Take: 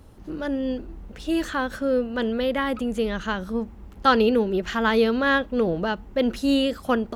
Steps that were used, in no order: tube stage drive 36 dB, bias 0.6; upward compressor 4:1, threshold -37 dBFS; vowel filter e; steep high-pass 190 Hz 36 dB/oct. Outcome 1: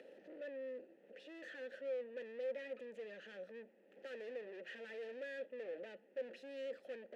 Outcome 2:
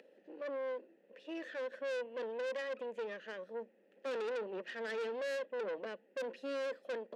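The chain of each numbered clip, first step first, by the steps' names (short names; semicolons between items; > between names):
steep high-pass > upward compressor > tube stage > vowel filter; upward compressor > vowel filter > tube stage > steep high-pass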